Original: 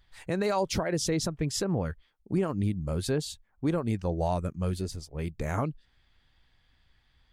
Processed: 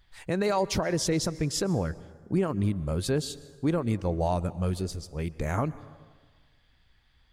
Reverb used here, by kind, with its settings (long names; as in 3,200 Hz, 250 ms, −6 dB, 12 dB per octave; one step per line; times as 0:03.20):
dense smooth reverb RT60 1.5 s, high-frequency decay 0.65×, pre-delay 110 ms, DRR 18 dB
level +1.5 dB